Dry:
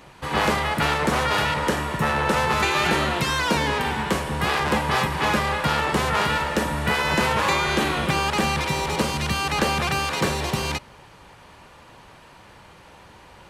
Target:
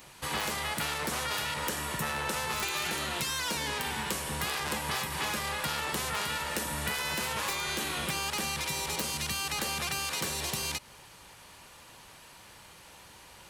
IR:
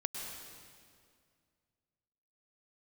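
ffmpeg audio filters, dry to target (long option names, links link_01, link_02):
-af "crystalizer=i=4.5:c=0,aeval=exprs='(mod(1.78*val(0)+1,2)-1)/1.78':channel_layout=same,acompressor=threshold=-21dB:ratio=6,volume=-8.5dB"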